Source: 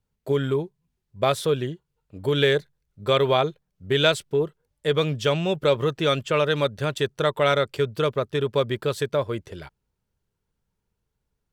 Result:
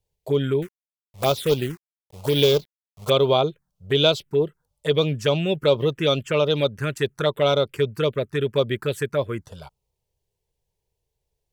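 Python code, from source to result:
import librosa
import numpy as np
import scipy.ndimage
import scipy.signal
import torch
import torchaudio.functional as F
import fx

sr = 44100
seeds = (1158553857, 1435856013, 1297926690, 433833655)

y = fx.low_shelf(x, sr, hz=110.0, db=-4.5)
y = fx.quant_companded(y, sr, bits=4, at=(0.62, 3.1))
y = fx.env_phaser(y, sr, low_hz=230.0, high_hz=1800.0, full_db=-17.5)
y = y * librosa.db_to_amplitude(3.5)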